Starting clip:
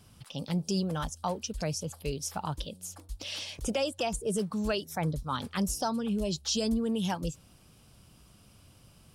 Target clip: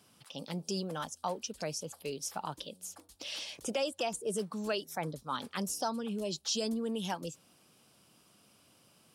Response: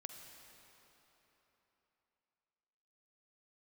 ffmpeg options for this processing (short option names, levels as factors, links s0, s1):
-af "highpass=240,volume=0.75"